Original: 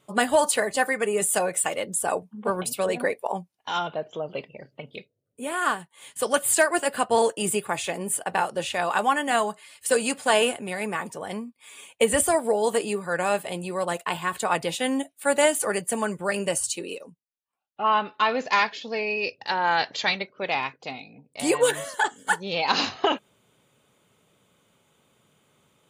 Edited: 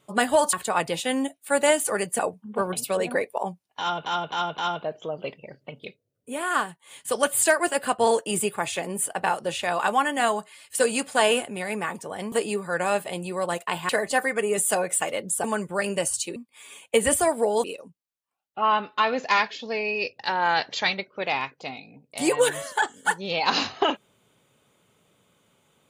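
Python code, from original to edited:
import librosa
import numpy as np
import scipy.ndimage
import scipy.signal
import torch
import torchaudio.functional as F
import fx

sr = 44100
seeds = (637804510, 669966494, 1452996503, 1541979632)

y = fx.edit(x, sr, fx.swap(start_s=0.53, length_s=1.55, other_s=14.28, other_length_s=1.66),
    fx.repeat(start_s=3.69, length_s=0.26, count=4),
    fx.move(start_s=11.43, length_s=1.28, to_s=16.86), tone=tone)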